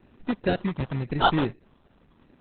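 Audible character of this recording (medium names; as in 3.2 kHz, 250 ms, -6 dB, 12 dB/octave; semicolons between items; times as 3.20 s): phasing stages 8, 0.89 Hz, lowest notch 460–1700 Hz; aliases and images of a low sample rate 2.2 kHz, jitter 0%; Opus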